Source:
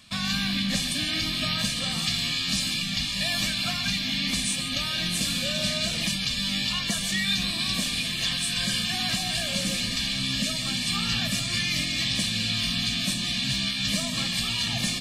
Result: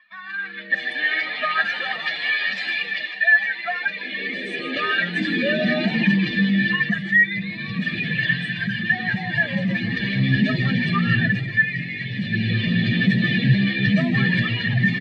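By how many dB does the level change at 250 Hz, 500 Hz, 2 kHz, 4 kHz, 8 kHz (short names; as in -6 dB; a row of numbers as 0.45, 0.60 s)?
+9.0 dB, +9.0 dB, +11.5 dB, -6.0 dB, under -25 dB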